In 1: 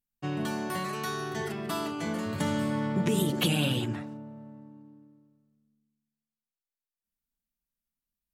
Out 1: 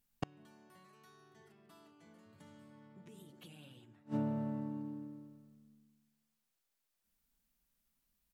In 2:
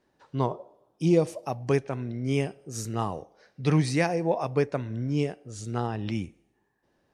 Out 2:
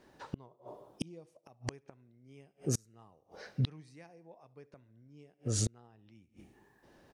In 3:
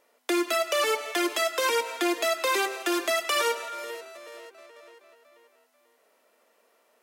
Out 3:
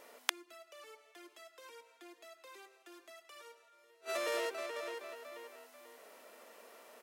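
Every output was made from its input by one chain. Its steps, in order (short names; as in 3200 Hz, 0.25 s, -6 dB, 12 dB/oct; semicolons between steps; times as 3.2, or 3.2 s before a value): feedback echo 71 ms, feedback 50%, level -23 dB; flipped gate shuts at -29 dBFS, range -38 dB; gain +8.5 dB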